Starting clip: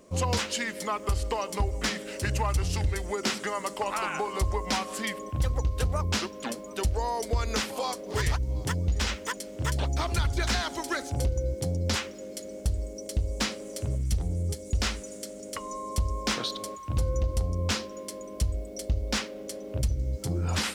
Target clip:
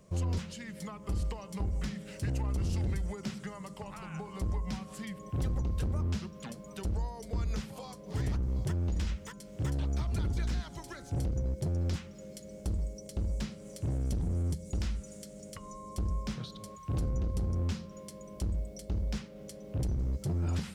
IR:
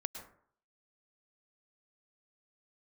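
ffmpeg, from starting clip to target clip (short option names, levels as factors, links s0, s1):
-filter_complex "[0:a]lowshelf=f=210:t=q:w=3:g=8,bandreject=f=171:t=h:w=4,bandreject=f=342:t=h:w=4,bandreject=f=513:t=h:w=4,bandreject=f=684:t=h:w=4,bandreject=f=855:t=h:w=4,bandreject=f=1026:t=h:w=4,bandreject=f=1197:t=h:w=4,bandreject=f=1368:t=h:w=4,bandreject=f=1539:t=h:w=4,acrossover=split=360[s0][s1];[s0]volume=14.1,asoftclip=hard,volume=0.0708[s2];[s1]acompressor=threshold=0.0112:ratio=6[s3];[s2][s3]amix=inputs=2:normalize=0,volume=0.501"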